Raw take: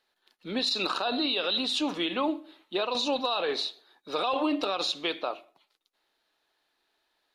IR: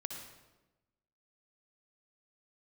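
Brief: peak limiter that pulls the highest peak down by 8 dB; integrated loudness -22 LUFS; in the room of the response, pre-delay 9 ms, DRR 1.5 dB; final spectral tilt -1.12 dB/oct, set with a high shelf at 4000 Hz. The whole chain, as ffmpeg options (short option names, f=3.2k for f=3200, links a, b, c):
-filter_complex "[0:a]highshelf=f=4k:g=-6.5,alimiter=level_in=2dB:limit=-24dB:level=0:latency=1,volume=-2dB,asplit=2[a][b];[1:a]atrim=start_sample=2205,adelay=9[c];[b][c]afir=irnorm=-1:irlink=0,volume=-0.5dB[d];[a][d]amix=inputs=2:normalize=0,volume=10.5dB"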